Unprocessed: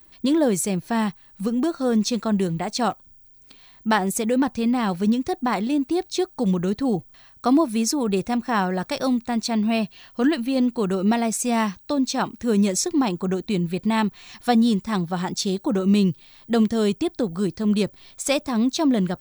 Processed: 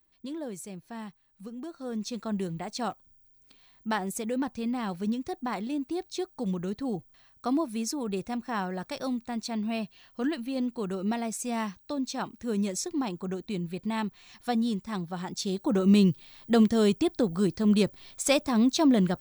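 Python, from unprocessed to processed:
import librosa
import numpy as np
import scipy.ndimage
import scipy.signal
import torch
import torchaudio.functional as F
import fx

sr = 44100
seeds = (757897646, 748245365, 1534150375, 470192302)

y = fx.gain(x, sr, db=fx.line((1.6, -17.5), (2.33, -9.5), (15.28, -9.5), (15.84, -2.0)))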